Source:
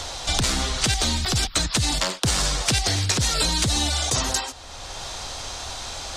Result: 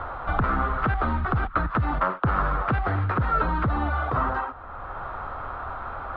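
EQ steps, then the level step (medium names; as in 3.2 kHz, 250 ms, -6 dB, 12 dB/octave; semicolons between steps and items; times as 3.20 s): resonant low-pass 1.3 kHz, resonance Q 5; distance through air 410 m; 0.0 dB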